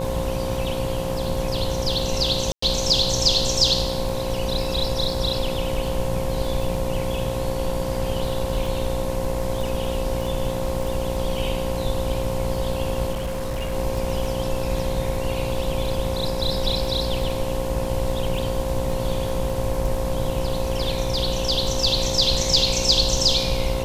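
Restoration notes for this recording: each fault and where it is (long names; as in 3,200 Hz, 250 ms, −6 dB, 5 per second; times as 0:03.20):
mains buzz 60 Hz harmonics 18 −29 dBFS
surface crackle 33 per second −30 dBFS
whistle 530 Hz −27 dBFS
0:02.52–0:02.62: drop-out 104 ms
0:13.11–0:13.74: clipping −23 dBFS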